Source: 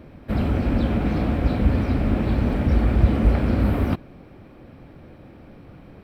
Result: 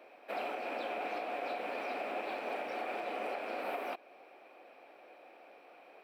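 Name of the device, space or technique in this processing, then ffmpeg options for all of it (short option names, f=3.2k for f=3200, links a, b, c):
laptop speaker: -af "highpass=f=440:w=0.5412,highpass=f=440:w=1.3066,equalizer=f=730:t=o:w=0.38:g=8,equalizer=f=2.5k:t=o:w=0.29:g=9.5,alimiter=limit=-21.5dB:level=0:latency=1:release=211,volume=-7dB"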